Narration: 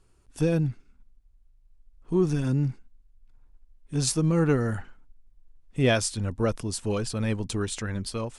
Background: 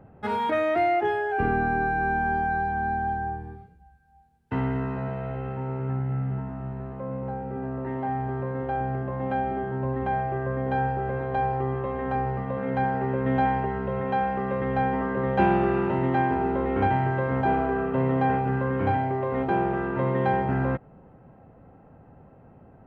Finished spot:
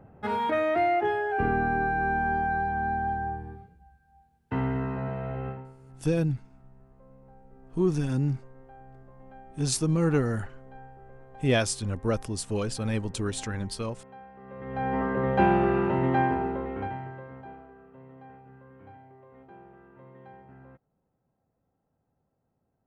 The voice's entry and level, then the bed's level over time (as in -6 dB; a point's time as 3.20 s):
5.65 s, -1.5 dB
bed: 5.49 s -1.5 dB
5.76 s -22.5 dB
14.34 s -22.5 dB
14.97 s -0.5 dB
16.25 s -0.5 dB
17.75 s -26 dB